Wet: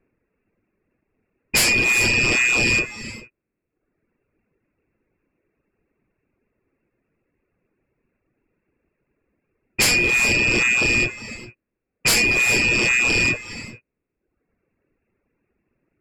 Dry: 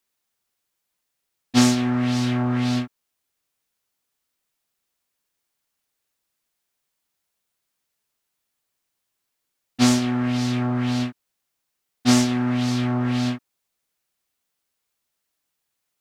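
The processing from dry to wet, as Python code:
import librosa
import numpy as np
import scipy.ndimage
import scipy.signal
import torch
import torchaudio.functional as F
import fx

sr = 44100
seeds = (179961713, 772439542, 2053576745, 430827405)

y = fx.freq_invert(x, sr, carrier_hz=2700)
y = fx.low_shelf_res(y, sr, hz=570.0, db=12.5, q=1.5)
y = fx.fold_sine(y, sr, drive_db=6, ceiling_db=-13.0)
y = fx.rev_gated(y, sr, seeds[0], gate_ms=440, shape='rising', drr_db=9.0)
y = fx.dereverb_blind(y, sr, rt60_s=0.89)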